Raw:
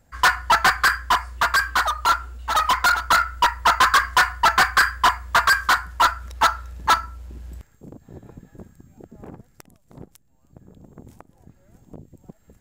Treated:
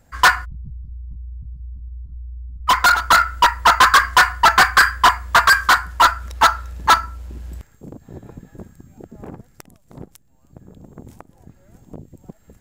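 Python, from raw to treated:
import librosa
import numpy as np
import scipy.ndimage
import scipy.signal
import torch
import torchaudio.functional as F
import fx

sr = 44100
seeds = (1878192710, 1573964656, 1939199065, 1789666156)

y = fx.cheby2_lowpass(x, sr, hz=650.0, order=4, stop_db=70, at=(0.44, 2.67), fade=0.02)
y = y * librosa.db_to_amplitude(4.5)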